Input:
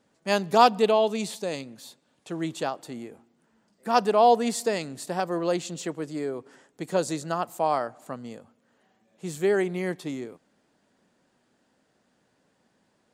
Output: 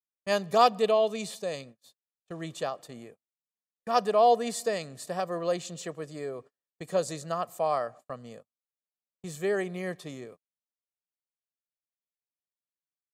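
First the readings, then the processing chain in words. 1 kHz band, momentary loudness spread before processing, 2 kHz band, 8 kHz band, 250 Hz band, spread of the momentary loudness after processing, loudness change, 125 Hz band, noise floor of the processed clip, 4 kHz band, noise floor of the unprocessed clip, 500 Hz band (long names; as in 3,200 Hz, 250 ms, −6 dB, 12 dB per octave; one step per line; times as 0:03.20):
−3.5 dB, 20 LU, −4.5 dB, −3.5 dB, −7.5 dB, 21 LU, −3.0 dB, −4.5 dB, below −85 dBFS, −3.5 dB, −70 dBFS, −2.5 dB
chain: comb filter 1.7 ms, depth 52%
noise gate −42 dBFS, range −42 dB
level −4.5 dB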